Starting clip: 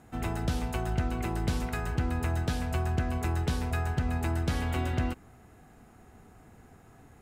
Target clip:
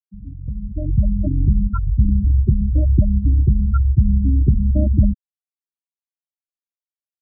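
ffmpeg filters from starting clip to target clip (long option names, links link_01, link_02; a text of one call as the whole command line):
ffmpeg -i in.wav -af "bandreject=frequency=1900:width=13,afftfilt=real='re*gte(hypot(re,im),0.112)':imag='im*gte(hypot(re,im),0.112)':win_size=1024:overlap=0.75,equalizer=frequency=7600:width_type=o:width=0.77:gain=7.5,dynaudnorm=framelen=130:gausssize=13:maxgain=16.5dB,asetrate=36028,aresample=44100,atempo=1.22405" out.wav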